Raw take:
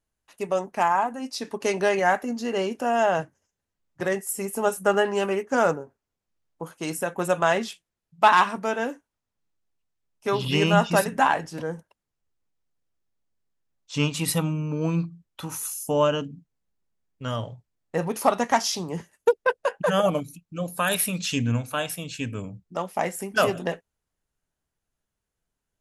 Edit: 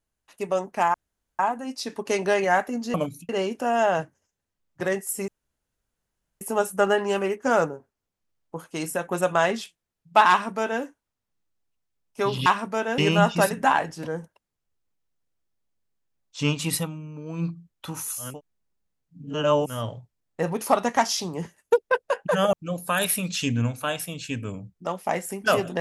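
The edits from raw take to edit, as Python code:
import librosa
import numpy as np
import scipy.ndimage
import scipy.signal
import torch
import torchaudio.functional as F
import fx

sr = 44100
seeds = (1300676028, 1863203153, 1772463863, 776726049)

y = fx.edit(x, sr, fx.insert_room_tone(at_s=0.94, length_s=0.45),
    fx.insert_room_tone(at_s=4.48, length_s=1.13),
    fx.duplicate(start_s=8.37, length_s=0.52, to_s=10.53),
    fx.fade_down_up(start_s=14.29, length_s=0.75, db=-10.0, fade_s=0.16),
    fx.reverse_span(start_s=15.84, length_s=1.42, crossfade_s=0.24),
    fx.move(start_s=20.08, length_s=0.35, to_s=2.49), tone=tone)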